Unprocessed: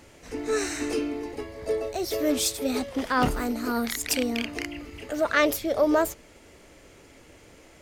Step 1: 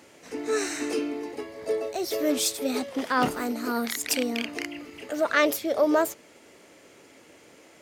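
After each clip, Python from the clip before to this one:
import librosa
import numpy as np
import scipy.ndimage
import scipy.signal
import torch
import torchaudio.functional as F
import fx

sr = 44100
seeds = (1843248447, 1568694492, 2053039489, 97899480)

y = scipy.signal.sosfilt(scipy.signal.butter(2, 190.0, 'highpass', fs=sr, output='sos'), x)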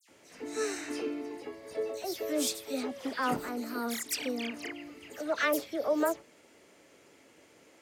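y = fx.dispersion(x, sr, late='lows', ms=88.0, hz=2800.0)
y = fx.end_taper(y, sr, db_per_s=500.0)
y = y * librosa.db_to_amplitude(-6.5)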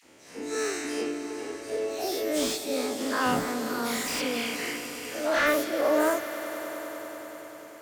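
y = fx.spec_dilate(x, sr, span_ms=120)
y = fx.echo_swell(y, sr, ms=98, loudest=5, wet_db=-17.5)
y = fx.slew_limit(y, sr, full_power_hz=170.0)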